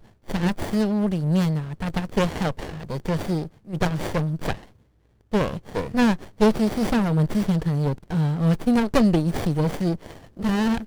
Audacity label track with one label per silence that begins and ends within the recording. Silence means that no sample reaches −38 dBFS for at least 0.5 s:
4.630000	5.320000	silence